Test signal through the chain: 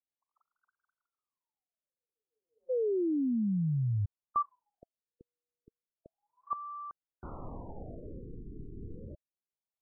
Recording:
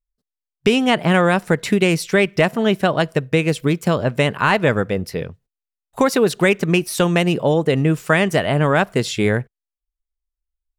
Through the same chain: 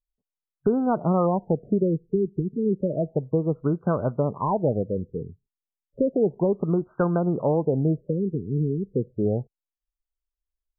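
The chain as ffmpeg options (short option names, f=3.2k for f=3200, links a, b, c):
-af "aexciter=amount=5.7:drive=9.8:freq=2.4k,afftfilt=real='re*lt(b*sr/1024,440*pow(1600/440,0.5+0.5*sin(2*PI*0.32*pts/sr)))':imag='im*lt(b*sr/1024,440*pow(1600/440,0.5+0.5*sin(2*PI*0.32*pts/sr)))':win_size=1024:overlap=0.75,volume=-5.5dB"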